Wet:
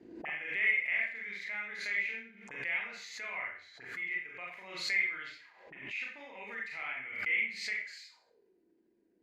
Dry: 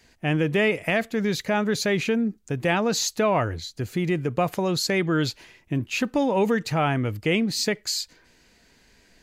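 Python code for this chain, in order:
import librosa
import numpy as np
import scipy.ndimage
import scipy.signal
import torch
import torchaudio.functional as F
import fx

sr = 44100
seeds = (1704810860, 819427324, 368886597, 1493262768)

y = fx.auto_wah(x, sr, base_hz=310.0, top_hz=2100.0, q=13.0, full_db=-26.0, direction='up')
y = fx.rev_schroeder(y, sr, rt60_s=0.44, comb_ms=31, drr_db=-3.0)
y = fx.pre_swell(y, sr, db_per_s=69.0)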